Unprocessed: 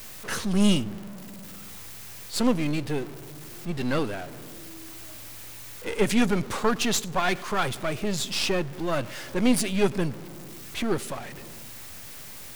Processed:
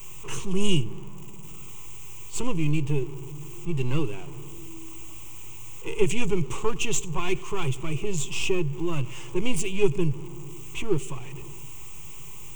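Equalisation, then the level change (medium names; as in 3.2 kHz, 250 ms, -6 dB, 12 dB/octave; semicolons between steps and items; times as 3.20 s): rippled EQ curve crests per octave 0.7, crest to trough 17 dB; dynamic bell 990 Hz, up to -6 dB, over -37 dBFS, Q 1.4; bass shelf 180 Hz +9.5 dB; -6.5 dB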